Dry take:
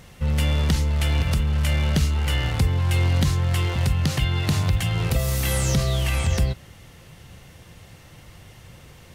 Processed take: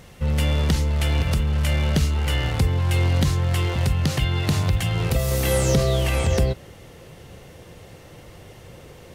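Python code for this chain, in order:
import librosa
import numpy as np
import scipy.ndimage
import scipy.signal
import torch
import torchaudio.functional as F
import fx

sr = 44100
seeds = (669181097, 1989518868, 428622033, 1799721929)

y = fx.peak_eq(x, sr, hz=450.0, db=fx.steps((0.0, 3.5), (5.31, 10.0)), octaves=1.4)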